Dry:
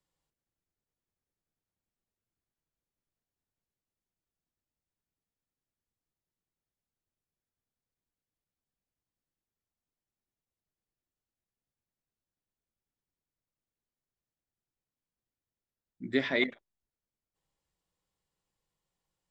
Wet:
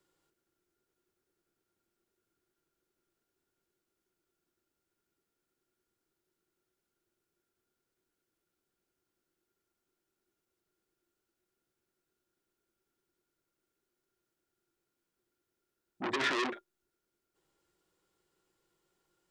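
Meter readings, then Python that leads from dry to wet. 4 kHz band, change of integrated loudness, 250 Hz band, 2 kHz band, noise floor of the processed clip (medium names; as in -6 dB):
0.0 dB, -3.0 dB, -6.0 dB, -2.0 dB, under -85 dBFS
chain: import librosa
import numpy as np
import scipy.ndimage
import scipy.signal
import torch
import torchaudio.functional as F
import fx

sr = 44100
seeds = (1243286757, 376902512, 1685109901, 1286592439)

y = fx.low_shelf(x, sr, hz=130.0, db=-8.0)
y = fx.over_compress(y, sr, threshold_db=-33.0, ratio=-1.0)
y = fx.small_body(y, sr, hz=(360.0, 1400.0), ring_ms=55, db=16)
y = fx.transformer_sat(y, sr, knee_hz=3100.0)
y = y * librosa.db_to_amplitude(2.5)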